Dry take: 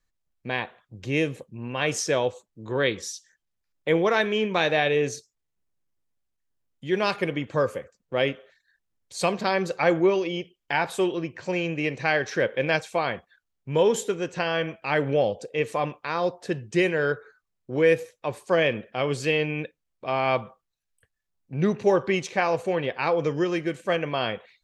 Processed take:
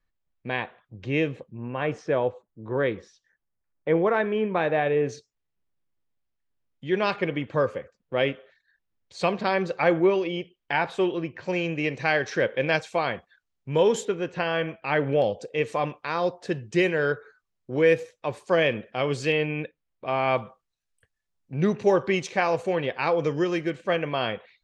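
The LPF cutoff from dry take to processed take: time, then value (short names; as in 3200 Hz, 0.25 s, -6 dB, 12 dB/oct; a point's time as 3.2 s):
3300 Hz
from 1.52 s 1600 Hz
from 5.09 s 3900 Hz
from 11.48 s 7200 Hz
from 14.05 s 3500 Hz
from 15.22 s 7200 Hz
from 19.32 s 3500 Hz
from 20.38 s 8900 Hz
from 23.7 s 4600 Hz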